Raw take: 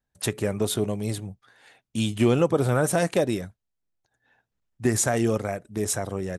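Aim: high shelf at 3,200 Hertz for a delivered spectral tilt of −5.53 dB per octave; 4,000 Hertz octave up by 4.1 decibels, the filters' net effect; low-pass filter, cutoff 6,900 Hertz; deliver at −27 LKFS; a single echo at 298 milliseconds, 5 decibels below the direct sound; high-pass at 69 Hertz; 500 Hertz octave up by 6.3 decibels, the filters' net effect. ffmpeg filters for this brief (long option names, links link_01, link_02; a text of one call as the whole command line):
ffmpeg -i in.wav -af "highpass=69,lowpass=6900,equalizer=frequency=500:width_type=o:gain=7.5,highshelf=frequency=3200:gain=-4.5,equalizer=frequency=4000:width_type=o:gain=8.5,aecho=1:1:298:0.562,volume=-6.5dB" out.wav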